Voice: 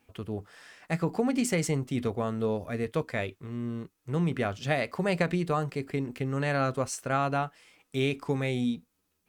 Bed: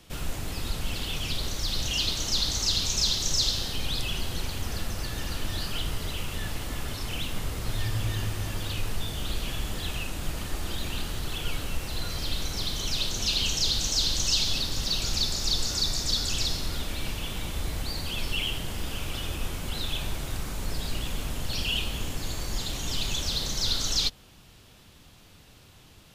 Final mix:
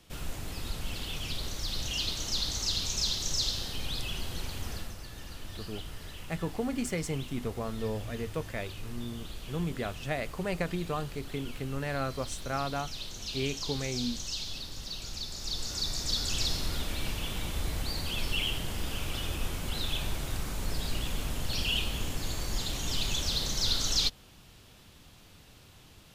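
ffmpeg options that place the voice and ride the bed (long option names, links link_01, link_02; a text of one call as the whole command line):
ffmpeg -i stem1.wav -i stem2.wav -filter_complex "[0:a]adelay=5400,volume=-5.5dB[link_01];[1:a]volume=5dB,afade=type=out:start_time=4.7:duration=0.28:silence=0.473151,afade=type=in:start_time=15.27:duration=1.34:silence=0.316228[link_02];[link_01][link_02]amix=inputs=2:normalize=0" out.wav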